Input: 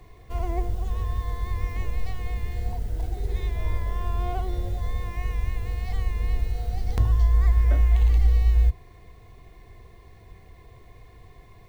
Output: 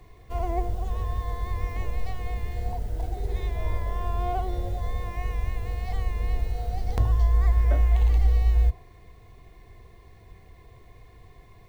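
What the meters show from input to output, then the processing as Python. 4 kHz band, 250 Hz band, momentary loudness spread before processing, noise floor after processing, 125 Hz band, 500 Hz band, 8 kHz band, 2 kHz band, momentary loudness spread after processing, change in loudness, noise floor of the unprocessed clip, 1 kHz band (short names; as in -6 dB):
-1.5 dB, -0.5 dB, 11 LU, -51 dBFS, -1.5 dB, +2.5 dB, n/a, -1.0 dB, 11 LU, -1.5 dB, -50 dBFS, +3.0 dB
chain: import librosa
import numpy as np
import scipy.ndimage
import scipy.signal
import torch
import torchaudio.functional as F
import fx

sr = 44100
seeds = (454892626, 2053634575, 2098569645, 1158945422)

y = fx.dynamic_eq(x, sr, hz=670.0, q=1.1, threshold_db=-49.0, ratio=4.0, max_db=6)
y = y * librosa.db_to_amplitude(-1.5)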